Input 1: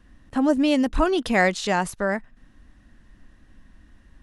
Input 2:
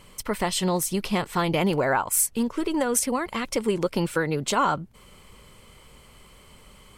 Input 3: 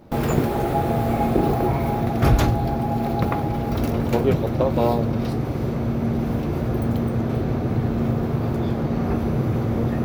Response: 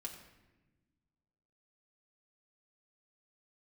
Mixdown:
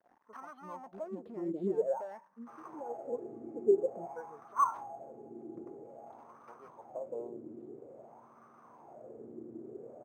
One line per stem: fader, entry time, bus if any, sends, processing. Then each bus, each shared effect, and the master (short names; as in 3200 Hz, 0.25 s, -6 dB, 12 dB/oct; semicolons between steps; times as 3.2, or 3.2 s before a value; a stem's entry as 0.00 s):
-5.5 dB, 0.00 s, send -22.5 dB, low shelf 60 Hz -5.5 dB; compressor 6:1, threshold -24 dBFS, peak gain reduction 9.5 dB; sample leveller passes 5; auto duck -9 dB, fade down 0.20 s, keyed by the second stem
-0.5 dB, 0.00 s, send -10 dB, de-esser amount 35%; spectral expander 2.5:1
-12.0 dB, 2.35 s, no send, HPF 87 Hz; bit-crush 8-bit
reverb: on, RT60 1.1 s, pre-delay 4 ms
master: low shelf 73 Hz -8 dB; wah 0.5 Hz 330–1200 Hz, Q 6.6; decimation joined by straight lines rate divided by 6×